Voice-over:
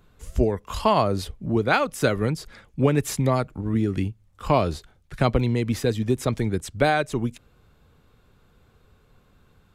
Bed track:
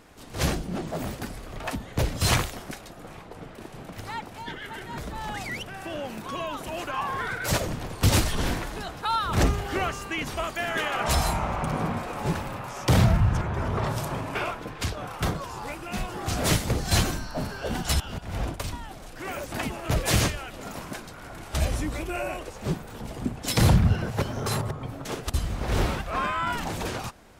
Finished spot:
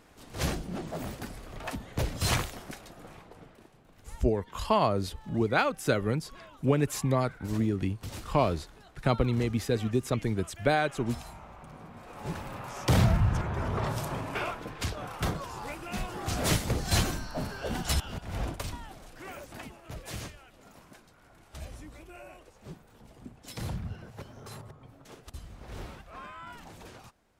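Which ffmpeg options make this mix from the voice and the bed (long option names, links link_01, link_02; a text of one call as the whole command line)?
ffmpeg -i stem1.wav -i stem2.wav -filter_complex "[0:a]adelay=3850,volume=-5dB[link_01];[1:a]volume=11.5dB,afade=type=out:start_time=3.02:duration=0.79:silence=0.177828,afade=type=in:start_time=11.92:duration=0.83:silence=0.149624,afade=type=out:start_time=18.57:duration=1.24:silence=0.211349[link_02];[link_01][link_02]amix=inputs=2:normalize=0" out.wav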